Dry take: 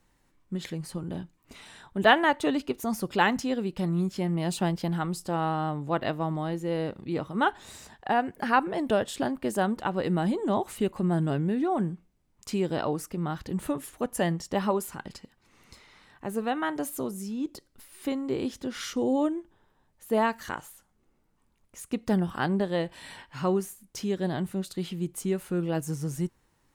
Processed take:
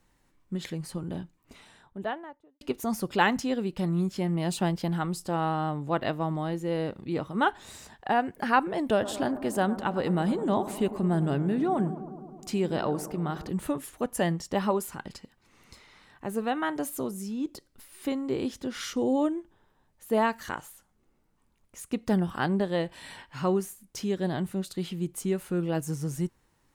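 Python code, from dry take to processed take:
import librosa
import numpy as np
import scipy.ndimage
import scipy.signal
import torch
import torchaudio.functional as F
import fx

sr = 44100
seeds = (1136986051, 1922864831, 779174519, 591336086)

y = fx.studio_fade_out(x, sr, start_s=1.1, length_s=1.51)
y = fx.echo_bbd(y, sr, ms=105, stages=1024, feedback_pct=75, wet_db=-14, at=(9.01, 13.48), fade=0.02)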